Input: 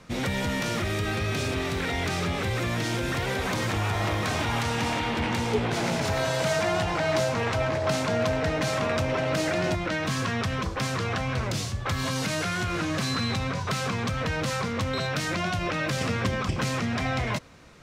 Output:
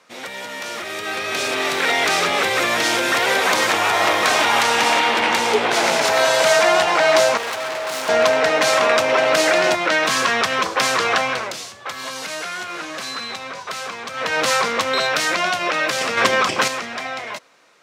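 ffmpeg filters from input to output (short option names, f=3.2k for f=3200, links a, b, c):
-filter_complex "[0:a]asettb=1/sr,asplit=3[a][b][c];[a]atrim=end=7.374[d];[b]atrim=start=7.37:end=8.09,asetpts=PTS-STARTPTS,afade=t=in:d=0.004:c=qsin,afade=t=out:st=0.716:d=0.004:c=qsin,volume=34.5dB,asoftclip=hard,volume=-34.5dB[e];[c]atrim=start=8.086[f];[d][e]acrossfade=d=0.004:c1=hsin:c2=qsin[g];[g][f]acrossfade=d=0.004:c1=qsin:c2=hsin,asettb=1/sr,asplit=3[h][i][j];[h]atrim=end=16.174[k];[i]atrim=start=16.17:end=16.68,asetpts=PTS-STARTPTS,afade=t=in:d=0.004:c=qsin,afade=t=out:st=0.506:d=0.004:c=qsin,acontrast=66[l];[j]atrim=start=16.676[m];[k][l]acrossfade=d=0.004:c1=hsin:c2=qsin[n];[n][m]acrossfade=d=0.004:c1=qsin:c2=hsin,asplit=3[o][p][q];[o]atrim=end=11.57,asetpts=PTS-STARTPTS,afade=t=out:st=11.21:d=0.36:silence=0.266073[r];[p]atrim=start=11.57:end=14.09,asetpts=PTS-STARTPTS,volume=-11.5dB[s];[q]atrim=start=14.09,asetpts=PTS-STARTPTS,afade=t=in:d=0.36:silence=0.266073[t];[r][s][t]concat=n=3:v=0:a=1,highpass=510,dynaudnorm=f=160:g=17:m=14dB"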